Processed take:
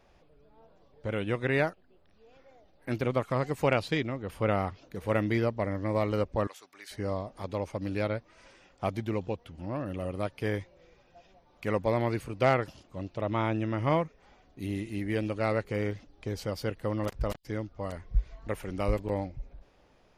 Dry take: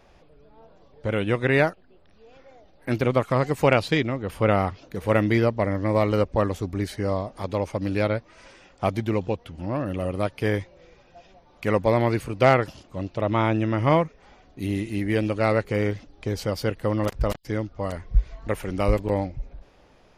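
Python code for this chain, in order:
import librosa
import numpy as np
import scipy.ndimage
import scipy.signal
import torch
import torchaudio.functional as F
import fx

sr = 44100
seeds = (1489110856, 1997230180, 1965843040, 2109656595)

y = fx.highpass(x, sr, hz=1200.0, slope=12, at=(6.47, 6.91))
y = F.gain(torch.from_numpy(y), -7.0).numpy()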